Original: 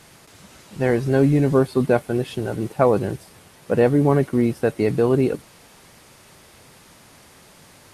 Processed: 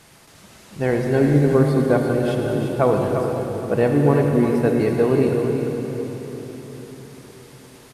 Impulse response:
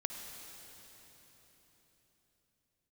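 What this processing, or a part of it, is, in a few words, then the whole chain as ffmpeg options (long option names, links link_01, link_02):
cave: -filter_complex "[0:a]asettb=1/sr,asplit=3[link_01][link_02][link_03];[link_01]atrim=end=1.324[link_04];[link_02]atrim=start=1.32:end=2.03,asetpts=PTS-STARTPTS,afade=type=in:duration=0.004:curve=qsin,afade=type=out:start_time=0.706:duration=0.004:curve=qsin,bandreject=frequency=2600:width=5.4[link_05];[link_03]atrim=start=2.026[link_06];[link_04][link_05]acrossfade=duration=0.004:curve1=hsin:curve2=qsin[link_07];[link_07][link_06]acrossfade=duration=0.004:curve1=qsin:curve2=hsin,aecho=1:1:347:0.376[link_08];[1:a]atrim=start_sample=2205[link_09];[link_08][link_09]afir=irnorm=-1:irlink=0"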